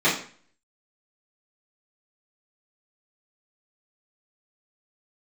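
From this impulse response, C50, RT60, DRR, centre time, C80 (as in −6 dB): 6.0 dB, 0.45 s, −11.5 dB, 34 ms, 10.5 dB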